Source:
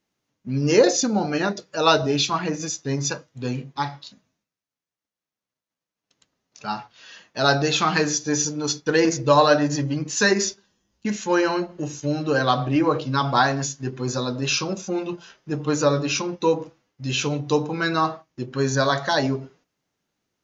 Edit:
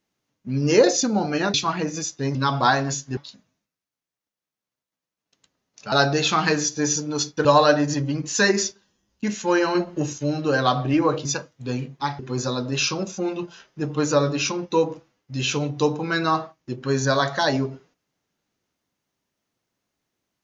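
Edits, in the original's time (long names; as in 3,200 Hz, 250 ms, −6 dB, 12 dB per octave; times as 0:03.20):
0:01.54–0:02.20: remove
0:03.01–0:03.95: swap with 0:13.07–0:13.89
0:06.70–0:07.41: remove
0:08.94–0:09.27: remove
0:11.57–0:11.95: clip gain +4 dB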